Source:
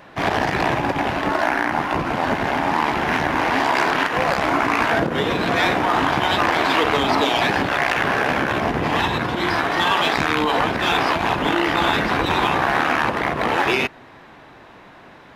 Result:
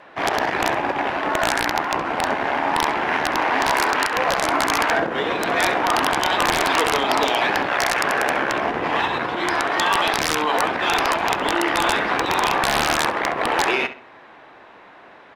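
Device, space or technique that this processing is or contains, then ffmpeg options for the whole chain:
overflowing digital effects unit: -filter_complex "[0:a]asettb=1/sr,asplit=3[a][b][c];[a]atrim=end=3.764[d];[b]atrim=start=3.76:end=4.26,asetpts=PTS-STARTPTS,afade=t=in:d=0.004:c=qsin,afade=t=out:st=0.496:d=0.004:c=qsin,bandreject=f=680:w=12[e];[c]atrim=start=4.256[f];[d][e]acrossfade=d=0.004:c1=hsin:c2=qsin[g];[g][f]acrossfade=d=0.004:c1=qsin:c2=hsin,bass=f=250:g=-13,treble=f=4k:g=-8,aeval=exprs='(mod(2.66*val(0)+1,2)-1)/2.66':c=same,lowpass=12k,asplit=2[h][i];[i]adelay=67,lowpass=f=4.2k:p=1,volume=-12dB,asplit=2[j][k];[k]adelay=67,lowpass=f=4.2k:p=1,volume=0.28,asplit=2[l][m];[m]adelay=67,lowpass=f=4.2k:p=1,volume=0.28[n];[h][j][l][n]amix=inputs=4:normalize=0"

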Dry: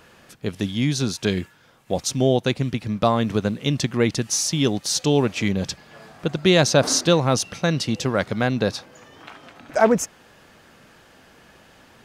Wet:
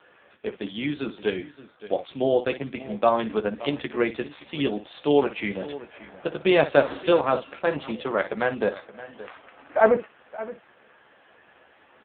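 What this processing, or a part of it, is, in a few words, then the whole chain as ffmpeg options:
satellite phone: -filter_complex "[0:a]asplit=3[a][b][c];[a]afade=t=out:st=6.55:d=0.02[d];[b]equalizer=f=76:w=1.3:g=5.5,afade=t=in:st=6.55:d=0.02,afade=t=out:st=6.99:d=0.02[e];[c]afade=t=in:st=6.99:d=0.02[f];[d][e][f]amix=inputs=3:normalize=0,highpass=350,lowpass=3.3k,aecho=1:1:14|58:0.501|0.237,aecho=1:1:572:0.158" -ar 8000 -c:a libopencore_amrnb -b:a 5900

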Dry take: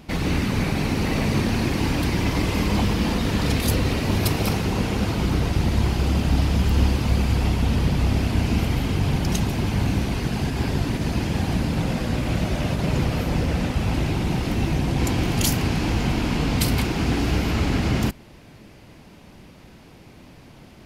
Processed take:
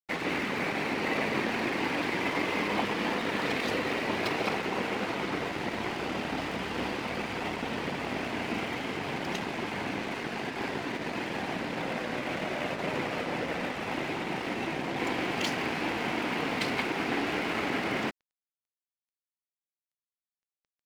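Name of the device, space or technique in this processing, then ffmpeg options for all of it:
pocket radio on a weak battery: -af "highpass=370,lowpass=3k,aeval=exprs='sgn(val(0))*max(abs(val(0))-0.00841,0)':c=same,equalizer=f=2k:t=o:w=0.51:g=4"

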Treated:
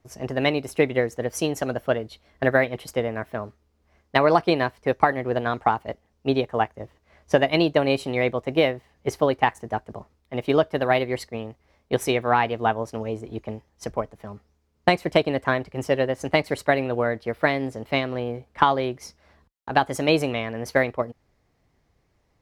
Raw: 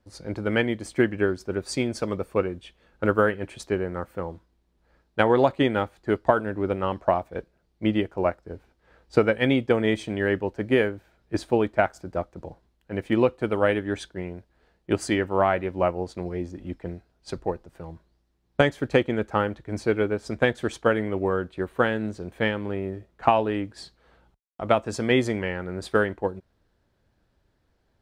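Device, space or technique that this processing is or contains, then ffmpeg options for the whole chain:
nightcore: -af "asetrate=55125,aresample=44100,volume=1.5dB"

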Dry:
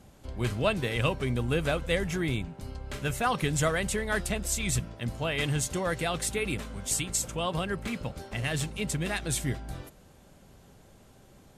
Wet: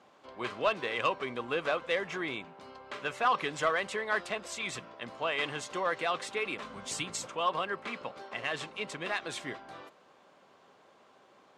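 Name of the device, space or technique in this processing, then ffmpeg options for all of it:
intercom: -filter_complex "[0:a]highpass=430,lowpass=3.8k,equalizer=f=1.1k:t=o:w=0.34:g=8,asoftclip=type=tanh:threshold=-17.5dB,asettb=1/sr,asplit=3[a][b][c];[a]atrim=end=6.624[d];[b]atrim=start=6.62:end=7.27,asetpts=PTS-STARTPTS,afade=t=in:d=0.004:c=qsin,afade=t=out:st=0.646:d=0.004:c=qsin,bass=f=250:g=11,treble=f=4k:g=4[e];[c]atrim=start=7.266[f];[d][e]acrossfade=d=0.004:c1=hsin:c2=qsin[g];[g][f]acrossfade=d=0.004:c1=qsin:c2=hsin"

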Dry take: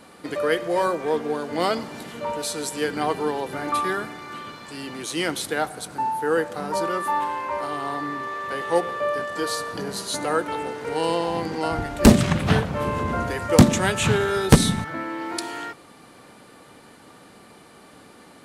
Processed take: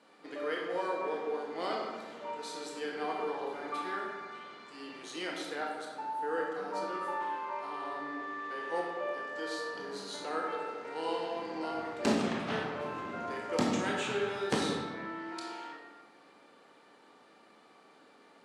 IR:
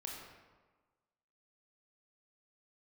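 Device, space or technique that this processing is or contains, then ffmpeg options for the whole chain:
supermarket ceiling speaker: -filter_complex "[0:a]highpass=280,lowpass=6.1k[a];[1:a]atrim=start_sample=2205[b];[a][b]afir=irnorm=-1:irlink=0,volume=-8.5dB"

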